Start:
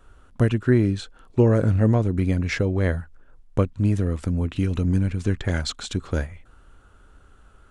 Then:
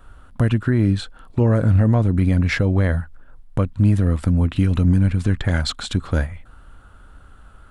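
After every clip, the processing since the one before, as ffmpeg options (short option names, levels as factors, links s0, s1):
-af "alimiter=limit=0.2:level=0:latency=1:release=75,equalizer=f=400:t=o:w=0.67:g=-7,equalizer=f=2500:t=o:w=0.67:g=-3,equalizer=f=6300:t=o:w=0.67:g=-8,volume=2.24"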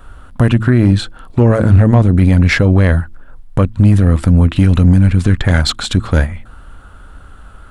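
-af "bandreject=f=110.8:t=h:w=4,bandreject=f=221.6:t=h:w=4,bandreject=f=332.4:t=h:w=4,aeval=exprs='0.501*(cos(1*acos(clip(val(0)/0.501,-1,1)))-cos(1*PI/2))+0.0316*(cos(4*acos(clip(val(0)/0.501,-1,1)))-cos(4*PI/2))':c=same,apsyclip=3.16,volume=0.841"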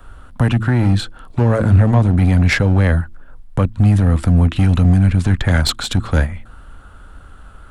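-filter_complex "[0:a]acrossover=split=240|380|1900[s0][s1][s2][s3];[s1]aeval=exprs='0.0794*(abs(mod(val(0)/0.0794+3,4)-2)-1)':c=same[s4];[s3]aeval=exprs='0.668*(cos(1*acos(clip(val(0)/0.668,-1,1)))-cos(1*PI/2))+0.266*(cos(2*acos(clip(val(0)/0.668,-1,1)))-cos(2*PI/2))':c=same[s5];[s0][s4][s2][s5]amix=inputs=4:normalize=0,volume=0.75"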